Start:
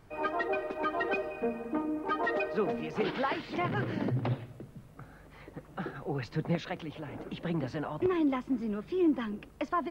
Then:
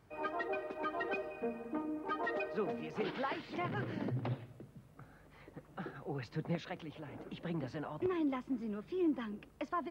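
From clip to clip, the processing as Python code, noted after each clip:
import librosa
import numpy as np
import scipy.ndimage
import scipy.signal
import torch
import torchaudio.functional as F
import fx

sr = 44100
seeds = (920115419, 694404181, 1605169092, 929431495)

y = scipy.signal.sosfilt(scipy.signal.butter(2, 49.0, 'highpass', fs=sr, output='sos'), x)
y = y * 10.0 ** (-6.5 / 20.0)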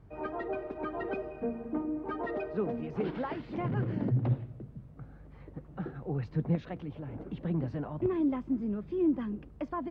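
y = fx.tilt_eq(x, sr, slope=-3.5)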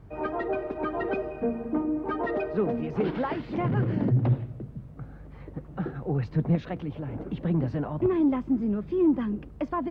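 y = 10.0 ** (-19.5 / 20.0) * np.tanh(x / 10.0 ** (-19.5 / 20.0))
y = y * 10.0 ** (6.5 / 20.0)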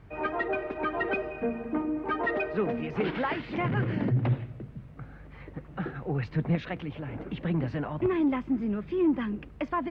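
y = fx.peak_eq(x, sr, hz=2300.0, db=10.5, octaves=1.8)
y = y * 10.0 ** (-3.0 / 20.0)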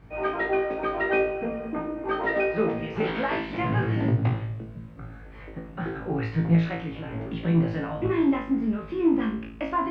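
y = fx.room_flutter(x, sr, wall_m=3.1, rt60_s=0.47)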